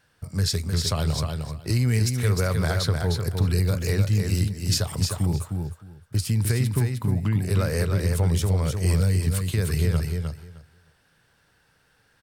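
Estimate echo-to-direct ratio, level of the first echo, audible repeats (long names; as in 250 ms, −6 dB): −5.0 dB, −5.0 dB, 2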